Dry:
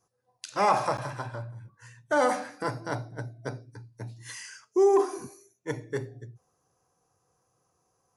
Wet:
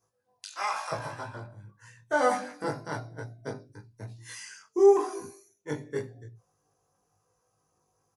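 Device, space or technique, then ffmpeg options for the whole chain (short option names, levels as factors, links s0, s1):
double-tracked vocal: -filter_complex "[0:a]asplit=2[s0][s1];[s1]adelay=20,volume=0.708[s2];[s0][s2]amix=inputs=2:normalize=0,flanger=delay=18:depth=2.3:speed=0.95,asplit=3[s3][s4][s5];[s3]afade=t=out:st=0.45:d=0.02[s6];[s4]highpass=1300,afade=t=in:st=0.45:d=0.02,afade=t=out:st=0.91:d=0.02[s7];[s5]afade=t=in:st=0.91:d=0.02[s8];[s6][s7][s8]amix=inputs=3:normalize=0"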